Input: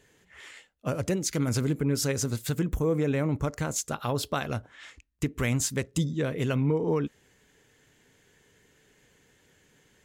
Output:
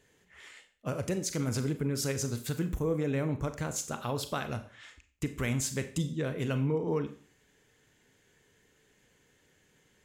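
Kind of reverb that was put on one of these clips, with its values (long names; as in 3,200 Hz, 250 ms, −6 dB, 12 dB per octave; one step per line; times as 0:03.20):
four-comb reverb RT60 0.43 s, combs from 30 ms, DRR 9 dB
level −4.5 dB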